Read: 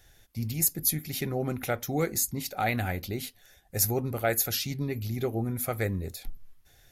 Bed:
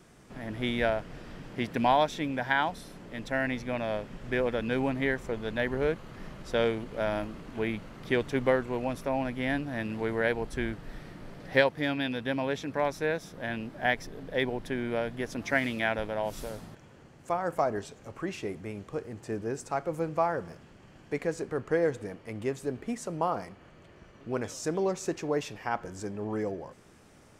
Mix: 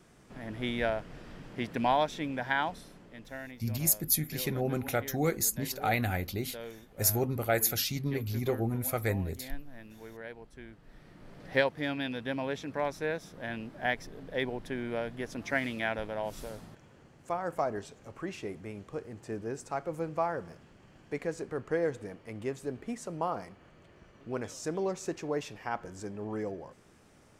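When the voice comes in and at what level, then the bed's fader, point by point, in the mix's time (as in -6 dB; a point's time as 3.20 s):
3.25 s, -1.0 dB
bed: 2.73 s -3 dB
3.61 s -16.5 dB
10.66 s -16.5 dB
11.45 s -3.5 dB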